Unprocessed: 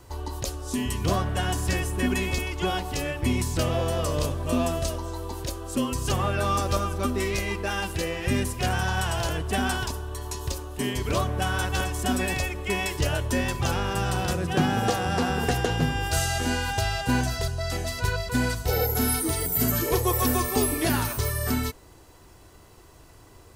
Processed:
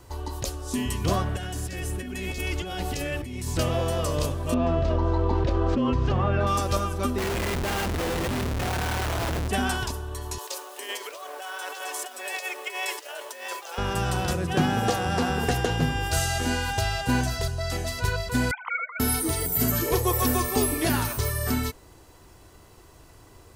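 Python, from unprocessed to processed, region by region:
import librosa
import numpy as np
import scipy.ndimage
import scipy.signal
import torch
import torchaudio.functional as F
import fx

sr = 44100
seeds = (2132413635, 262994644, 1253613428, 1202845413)

y = fx.chain(x, sr, fx.over_compress(threshold_db=-31.0, ratio=-1.0),
    fx.peak_eq(hz=1000.0, db=-10.5, octaves=0.38), at=(1.36, 3.48))
y = fx.chain(y, sr, fx.median_filter(points=5),
    fx.spacing_loss(db_at_10k=28),
    fx.env_flatten(amount_pct=100), at=(4.54, 6.47))
y = fx.chain(y, sr, fx.delta_mod(bps=64000, step_db=-42.5),
    fx.high_shelf(hz=3100.0, db=4.0),
    fx.schmitt(flips_db=-31.0), at=(7.18, 9.48))
y = fx.chain(y, sr, fx.over_compress(threshold_db=-29.0, ratio=-0.5),
    fx.quant_dither(seeds[0], bits=8, dither='none'),
    fx.cheby2_highpass(hz=180.0, order=4, stop_db=50), at=(10.38, 13.78))
y = fx.chain(y, sr, fx.sine_speech(),
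    fx.highpass(hz=910.0, slope=24),
    fx.comb(ms=0.9, depth=0.94), at=(18.51, 19.0))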